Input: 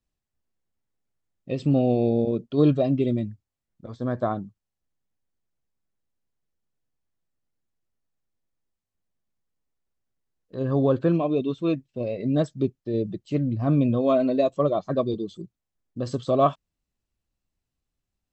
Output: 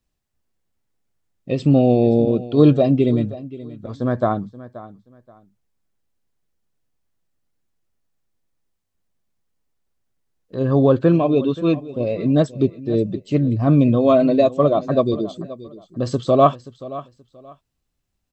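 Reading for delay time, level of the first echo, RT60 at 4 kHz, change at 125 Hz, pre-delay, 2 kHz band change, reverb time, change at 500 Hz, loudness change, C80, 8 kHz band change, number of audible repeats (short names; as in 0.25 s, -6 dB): 0.528 s, -17.0 dB, none, +6.5 dB, none, +6.5 dB, none, +6.5 dB, +6.5 dB, none, n/a, 2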